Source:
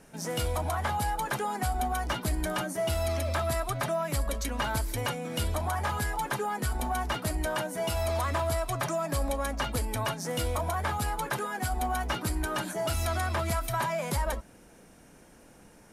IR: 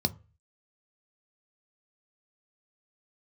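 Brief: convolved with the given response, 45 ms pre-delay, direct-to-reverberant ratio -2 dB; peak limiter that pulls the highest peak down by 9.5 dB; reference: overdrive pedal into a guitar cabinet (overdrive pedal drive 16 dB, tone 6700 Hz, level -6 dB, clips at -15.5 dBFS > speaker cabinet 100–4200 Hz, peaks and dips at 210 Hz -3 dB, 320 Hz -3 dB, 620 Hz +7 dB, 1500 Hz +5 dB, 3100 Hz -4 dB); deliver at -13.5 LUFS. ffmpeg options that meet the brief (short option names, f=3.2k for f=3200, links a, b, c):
-filter_complex "[0:a]alimiter=level_in=5.5dB:limit=-24dB:level=0:latency=1,volume=-5.5dB,asplit=2[a][b];[1:a]atrim=start_sample=2205,adelay=45[c];[b][c]afir=irnorm=-1:irlink=0,volume=-4.5dB[d];[a][d]amix=inputs=2:normalize=0,asplit=2[e][f];[f]highpass=f=720:p=1,volume=16dB,asoftclip=type=tanh:threshold=-15.5dB[g];[e][g]amix=inputs=2:normalize=0,lowpass=f=6.7k:p=1,volume=-6dB,highpass=100,equalizer=f=210:t=q:w=4:g=-3,equalizer=f=320:t=q:w=4:g=-3,equalizer=f=620:t=q:w=4:g=7,equalizer=f=1.5k:t=q:w=4:g=5,equalizer=f=3.1k:t=q:w=4:g=-4,lowpass=f=4.2k:w=0.5412,lowpass=f=4.2k:w=1.3066,volume=10dB"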